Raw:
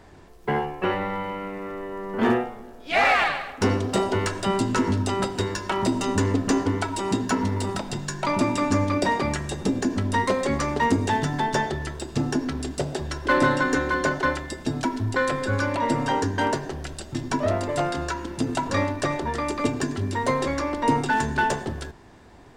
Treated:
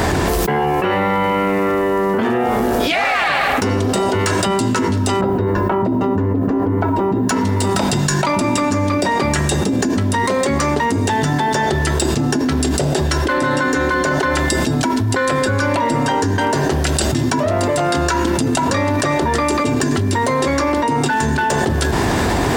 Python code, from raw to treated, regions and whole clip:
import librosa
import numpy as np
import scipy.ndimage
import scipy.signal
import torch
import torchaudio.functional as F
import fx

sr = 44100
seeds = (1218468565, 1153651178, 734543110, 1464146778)

y = fx.chain(x, sr, fx.bessel_lowpass(hz=850.0, order=2),
    fx.quant_dither(seeds[0], bits=12, dither='none'), at=(5.21, 7.29))
y = scipy.signal.sosfilt(scipy.signal.butter(2, 45.0, 'highpass', fs=sr, output='sos'), y)
y = fx.high_shelf(y, sr, hz=9600.0, db=8.5)
y = fx.env_flatten(y, sr, amount_pct=100)